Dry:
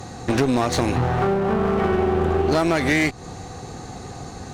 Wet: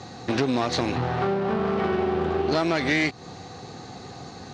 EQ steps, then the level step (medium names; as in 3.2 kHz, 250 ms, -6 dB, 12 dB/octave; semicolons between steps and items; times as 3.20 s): high-pass 110 Hz 12 dB/octave; resonant low-pass 4.6 kHz, resonance Q 1.6; -4.0 dB